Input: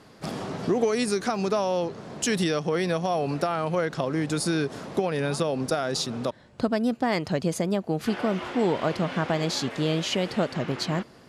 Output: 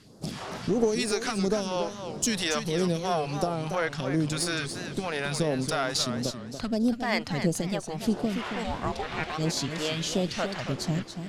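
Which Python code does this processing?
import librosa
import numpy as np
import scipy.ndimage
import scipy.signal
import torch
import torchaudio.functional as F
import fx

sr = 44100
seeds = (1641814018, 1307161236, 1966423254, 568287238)

y = fx.cheby_harmonics(x, sr, harmonics=(6,), levels_db=(-25,), full_scale_db=-10.0)
y = fx.phaser_stages(y, sr, stages=2, low_hz=170.0, high_hz=2100.0, hz=1.5, feedback_pct=35)
y = fx.ring_mod(y, sr, carrier_hz=fx.line((8.63, 370.0), (9.37, 950.0)), at=(8.63, 9.37), fade=0.02)
y = fx.echo_warbled(y, sr, ms=280, feedback_pct=32, rate_hz=2.8, cents=164, wet_db=-8.5)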